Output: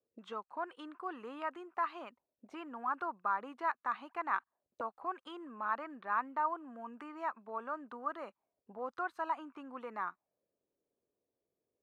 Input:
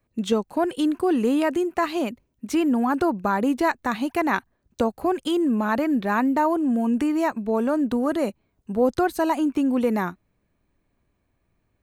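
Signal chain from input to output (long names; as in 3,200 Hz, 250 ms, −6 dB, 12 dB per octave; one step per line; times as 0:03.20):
dynamic equaliser 3,000 Hz, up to +4 dB, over −42 dBFS, Q 1.6
envelope filter 460–1,200 Hz, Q 3.7, up, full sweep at −23 dBFS
level −4.5 dB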